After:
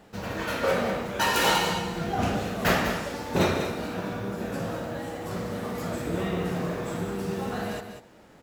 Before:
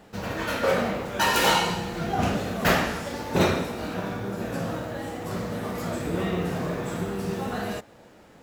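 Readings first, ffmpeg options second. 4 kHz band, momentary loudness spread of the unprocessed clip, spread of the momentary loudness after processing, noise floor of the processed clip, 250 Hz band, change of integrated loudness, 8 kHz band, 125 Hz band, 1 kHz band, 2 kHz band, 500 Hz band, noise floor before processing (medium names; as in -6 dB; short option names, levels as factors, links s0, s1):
-1.5 dB, 10 LU, 10 LU, -53 dBFS, -1.5 dB, -1.5 dB, -1.5 dB, -1.5 dB, -1.5 dB, -1.5 dB, -1.0 dB, -52 dBFS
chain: -af "aecho=1:1:194:0.376,volume=0.794"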